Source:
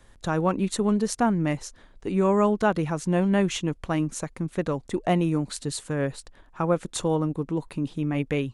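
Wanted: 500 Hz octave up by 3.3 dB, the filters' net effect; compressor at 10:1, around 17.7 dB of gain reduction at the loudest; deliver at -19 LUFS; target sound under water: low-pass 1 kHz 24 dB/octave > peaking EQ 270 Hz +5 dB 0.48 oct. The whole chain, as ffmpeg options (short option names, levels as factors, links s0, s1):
-af "equalizer=f=500:t=o:g=3.5,acompressor=threshold=0.02:ratio=10,lowpass=f=1000:w=0.5412,lowpass=f=1000:w=1.3066,equalizer=f=270:t=o:w=0.48:g=5,volume=8.91"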